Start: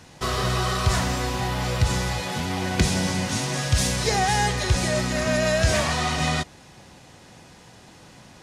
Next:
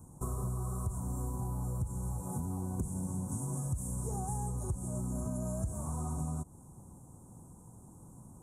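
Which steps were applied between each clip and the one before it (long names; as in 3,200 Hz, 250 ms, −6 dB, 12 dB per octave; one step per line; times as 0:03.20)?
elliptic band-stop filter 1,000–8,200 Hz, stop band 40 dB
parametric band 640 Hz −13 dB 1.8 octaves
downward compressor 6 to 1, threshold −33 dBFS, peak gain reduction 16.5 dB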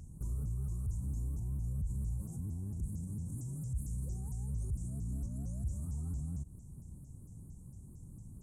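brickwall limiter −34.5 dBFS, peak gain reduction 11 dB
guitar amp tone stack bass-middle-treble 10-0-1
pitch modulation by a square or saw wave saw up 4.4 Hz, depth 250 cents
level +15 dB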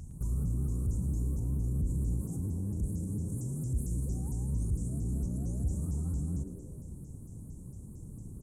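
echo with shifted repeats 110 ms, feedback 40%, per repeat +110 Hz, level −11.5 dB
level +5 dB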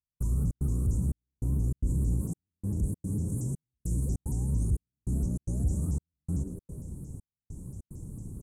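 gate pattern "..xxx.xxxxx." 148 BPM −60 dB
level +4 dB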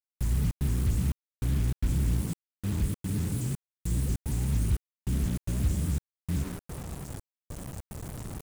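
bit reduction 7 bits
level +1 dB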